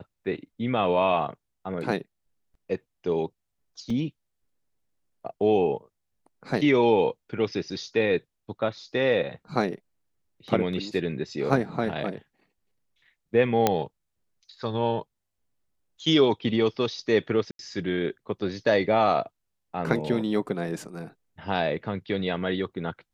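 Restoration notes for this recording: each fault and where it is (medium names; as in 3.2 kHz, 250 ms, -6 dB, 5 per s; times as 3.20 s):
3.90 s: dropout 2.4 ms
13.67 s: pop -6 dBFS
17.51–17.59 s: dropout 82 ms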